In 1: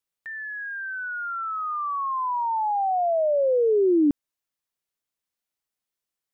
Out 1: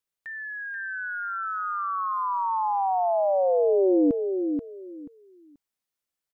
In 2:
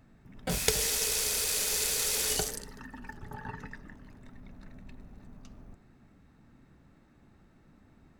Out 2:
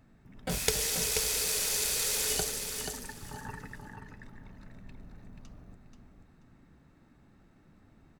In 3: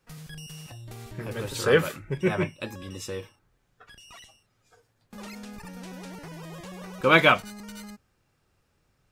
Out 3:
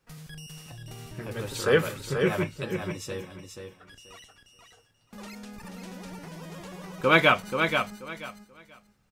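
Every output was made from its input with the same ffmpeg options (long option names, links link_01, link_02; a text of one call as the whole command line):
ffmpeg -i in.wav -af "aecho=1:1:483|966|1449:0.501|0.105|0.0221,volume=-1.5dB" out.wav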